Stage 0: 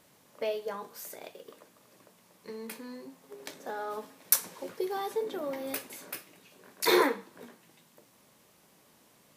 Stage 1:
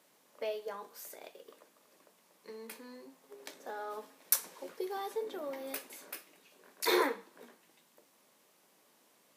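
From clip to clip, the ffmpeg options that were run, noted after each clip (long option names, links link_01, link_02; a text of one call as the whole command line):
ffmpeg -i in.wav -af "highpass=270,volume=-4.5dB" out.wav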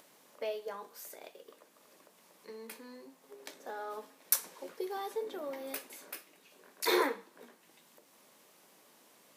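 ffmpeg -i in.wav -af "acompressor=mode=upward:threshold=-55dB:ratio=2.5" out.wav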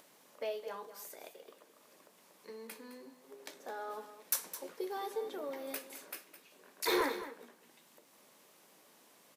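ffmpeg -i in.wav -af "asoftclip=type=tanh:threshold=-21dB,aecho=1:1:212:0.237,volume=-1dB" out.wav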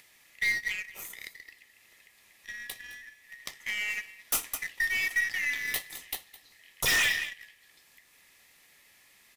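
ffmpeg -i in.wav -filter_complex "[0:a]afftfilt=real='real(if(lt(b,272),68*(eq(floor(b/68),0)*3+eq(floor(b/68),1)*0+eq(floor(b/68),2)*1+eq(floor(b/68),3)*2)+mod(b,68),b),0)':imag='imag(if(lt(b,272),68*(eq(floor(b/68),0)*3+eq(floor(b/68),1)*0+eq(floor(b/68),2)*1+eq(floor(b/68),3)*2)+mod(b,68),b),0)':win_size=2048:overlap=0.75,asplit=2[link_01][link_02];[link_02]aeval=exprs='0.112*sin(PI/2*3.98*val(0)/0.112)':channel_layout=same,volume=-7.5dB[link_03];[link_01][link_03]amix=inputs=2:normalize=0,aeval=exprs='0.106*(cos(1*acos(clip(val(0)/0.106,-1,1)))-cos(1*PI/2))+0.00376*(cos(4*acos(clip(val(0)/0.106,-1,1)))-cos(4*PI/2))+0.00944*(cos(7*acos(clip(val(0)/0.106,-1,1)))-cos(7*PI/2))':channel_layout=same" out.wav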